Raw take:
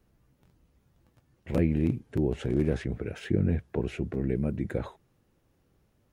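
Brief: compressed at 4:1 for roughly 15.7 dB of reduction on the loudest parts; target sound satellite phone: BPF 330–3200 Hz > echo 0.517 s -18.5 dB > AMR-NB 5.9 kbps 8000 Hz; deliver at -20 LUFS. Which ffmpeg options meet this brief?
-af "acompressor=threshold=-40dB:ratio=4,highpass=330,lowpass=3.2k,aecho=1:1:517:0.119,volume=30dB" -ar 8000 -c:a libopencore_amrnb -b:a 5900

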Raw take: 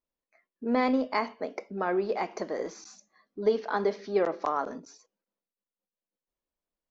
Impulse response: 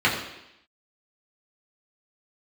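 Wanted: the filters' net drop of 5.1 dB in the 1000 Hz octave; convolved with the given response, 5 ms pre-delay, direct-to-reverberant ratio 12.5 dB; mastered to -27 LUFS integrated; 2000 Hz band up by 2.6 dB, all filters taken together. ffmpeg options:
-filter_complex "[0:a]equalizer=f=1k:t=o:g=-8,equalizer=f=2k:t=o:g=5.5,asplit=2[a][b];[1:a]atrim=start_sample=2205,adelay=5[c];[b][c]afir=irnorm=-1:irlink=0,volume=-30.5dB[d];[a][d]amix=inputs=2:normalize=0,volume=4dB"

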